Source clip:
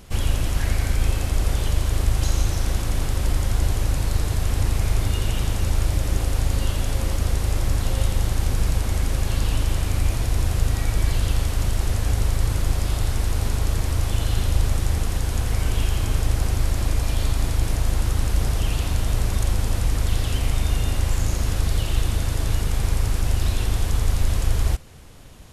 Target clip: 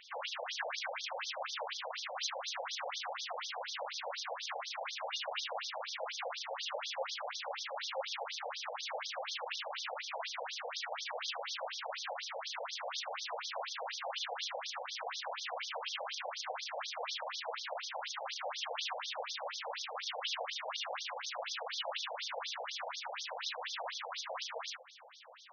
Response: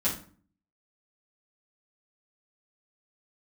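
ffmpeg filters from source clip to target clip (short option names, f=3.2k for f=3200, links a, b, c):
-af "alimiter=limit=-15dB:level=0:latency=1:release=33,afftfilt=real='re*between(b*sr/1024,630*pow(4700/630,0.5+0.5*sin(2*PI*4.1*pts/sr))/1.41,630*pow(4700/630,0.5+0.5*sin(2*PI*4.1*pts/sr))*1.41)':imag='im*between(b*sr/1024,630*pow(4700/630,0.5+0.5*sin(2*PI*4.1*pts/sr))/1.41,630*pow(4700/630,0.5+0.5*sin(2*PI*4.1*pts/sr))*1.41)':win_size=1024:overlap=0.75,volume=3dB"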